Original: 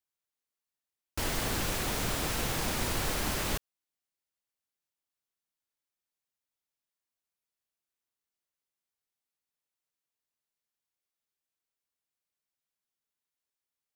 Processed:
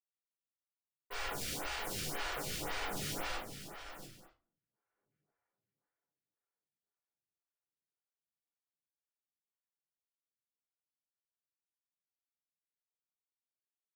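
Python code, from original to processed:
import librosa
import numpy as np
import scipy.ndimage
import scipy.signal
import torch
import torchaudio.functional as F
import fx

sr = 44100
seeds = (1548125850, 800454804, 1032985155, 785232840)

p1 = fx.doppler_pass(x, sr, speed_mps=22, closest_m=3.6, pass_at_s=5.09)
p2 = scipy.signal.sosfilt(scipy.signal.butter(16, 1100.0, 'lowpass', fs=sr, output='sos'), p1)
p3 = fx.env_lowpass_down(p2, sr, base_hz=400.0, full_db=-55.0)
p4 = fx.leveller(p3, sr, passes=3)
p5 = fx.noise_vocoder(p4, sr, seeds[0], bands=3)
p6 = (np.mod(10.0 ** (58.0 / 20.0) * p5 + 1.0, 2.0) - 1.0) / 10.0 ** (58.0 / 20.0)
p7 = p6 + fx.echo_multitap(p6, sr, ms=(53, 297, 693, 892), db=(-7.5, -13.0, -10.0, -19.0), dry=0)
p8 = fx.room_shoebox(p7, sr, seeds[1], volume_m3=190.0, walls='furnished', distance_m=4.7)
p9 = fx.stagger_phaser(p8, sr, hz=1.9)
y = F.gain(torch.from_numpy(p9), 16.0).numpy()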